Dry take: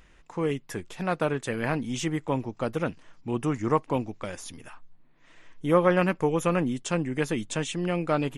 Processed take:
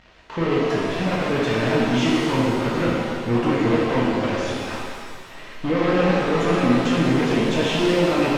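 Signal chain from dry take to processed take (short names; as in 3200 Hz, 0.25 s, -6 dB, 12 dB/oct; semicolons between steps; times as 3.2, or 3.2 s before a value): low shelf 230 Hz -6 dB; limiter -21 dBFS, peak gain reduction 12 dB; power-law curve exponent 0.35; LFO notch saw down 8.6 Hz 370–1800 Hz; crossover distortion -33 dBFS; air absorption 220 m; shimmer reverb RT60 2 s, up +7 st, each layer -8 dB, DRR -5.5 dB; gain +7 dB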